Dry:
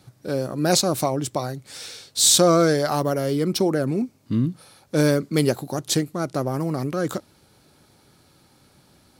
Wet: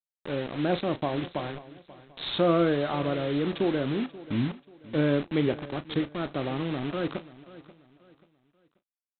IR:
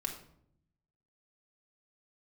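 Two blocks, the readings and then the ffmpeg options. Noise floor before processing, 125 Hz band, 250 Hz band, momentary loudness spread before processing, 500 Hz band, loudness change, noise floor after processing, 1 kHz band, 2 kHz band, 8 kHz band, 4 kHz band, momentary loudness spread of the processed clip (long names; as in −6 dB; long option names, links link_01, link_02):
−58 dBFS, −7.0 dB, −4.5 dB, 13 LU, −6.0 dB, −7.0 dB, below −85 dBFS, −6.5 dB, −4.0 dB, below −40 dB, −11.5 dB, 12 LU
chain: -filter_complex "[0:a]adynamicequalizer=threshold=0.0316:dfrequency=310:dqfactor=2.1:tfrequency=310:tqfactor=2.1:attack=5:release=100:ratio=0.375:range=2:mode=boostabove:tftype=bell,aresample=8000,acrusher=bits=4:mix=0:aa=0.000001,aresample=44100,asplit=2[link_01][link_02];[link_02]adelay=35,volume=-14dB[link_03];[link_01][link_03]amix=inputs=2:normalize=0,aecho=1:1:535|1070|1605:0.126|0.0428|0.0146,volume=-7.5dB"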